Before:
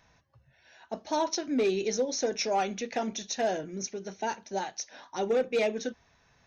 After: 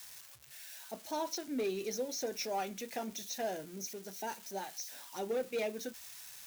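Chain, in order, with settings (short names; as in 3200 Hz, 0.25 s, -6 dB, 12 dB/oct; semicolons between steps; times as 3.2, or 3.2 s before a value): switching spikes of -31.5 dBFS; gain -8.5 dB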